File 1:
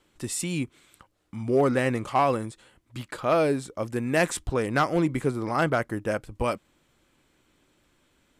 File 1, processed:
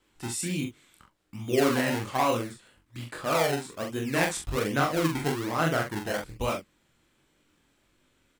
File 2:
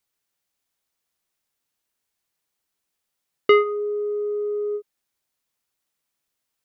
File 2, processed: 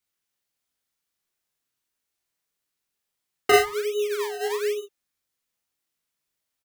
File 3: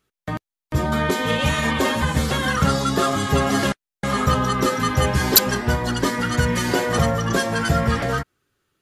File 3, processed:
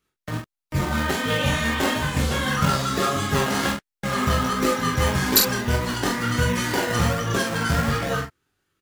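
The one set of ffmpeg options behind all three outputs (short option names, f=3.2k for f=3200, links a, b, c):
-filter_complex "[0:a]flanger=delay=19.5:depth=6.1:speed=1.5,acrossover=split=720[a][b];[a]acrusher=samples=26:mix=1:aa=0.000001:lfo=1:lforange=26:lforate=1.2[c];[c][b]amix=inputs=2:normalize=0,asplit=2[d][e];[e]adelay=43,volume=-5dB[f];[d][f]amix=inputs=2:normalize=0"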